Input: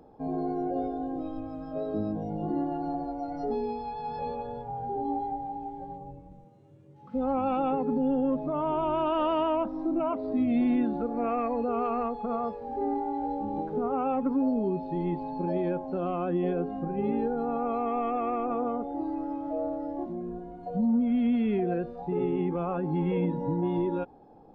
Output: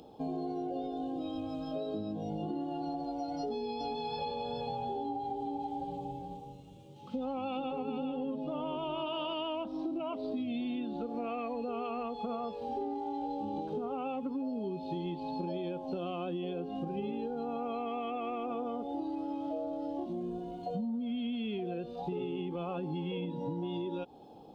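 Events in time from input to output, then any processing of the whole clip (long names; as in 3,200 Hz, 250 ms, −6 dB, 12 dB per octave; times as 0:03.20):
0:03.39–0:09.34: single-tap delay 412 ms −5.5 dB
whole clip: high-pass filter 99 Hz 6 dB per octave; high shelf with overshoot 2,400 Hz +9 dB, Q 3; downward compressor 10 to 1, threshold −35 dBFS; level +2 dB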